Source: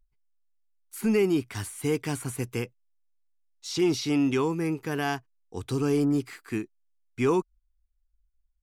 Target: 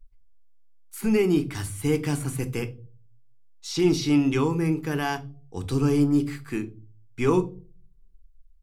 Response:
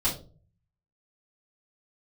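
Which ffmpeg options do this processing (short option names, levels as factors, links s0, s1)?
-filter_complex "[0:a]asplit=2[s0][s1];[1:a]atrim=start_sample=2205,lowshelf=f=120:g=12[s2];[s1][s2]afir=irnorm=-1:irlink=0,volume=0.15[s3];[s0][s3]amix=inputs=2:normalize=0"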